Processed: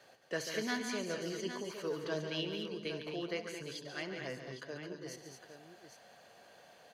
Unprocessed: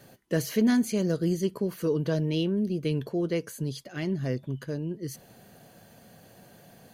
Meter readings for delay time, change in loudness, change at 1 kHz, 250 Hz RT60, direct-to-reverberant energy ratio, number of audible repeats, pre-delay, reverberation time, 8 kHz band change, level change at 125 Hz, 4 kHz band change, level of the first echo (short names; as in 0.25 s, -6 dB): 70 ms, -11.0 dB, -2.5 dB, none, none, 5, none, none, -6.0 dB, -18.0 dB, -1.5 dB, -16.0 dB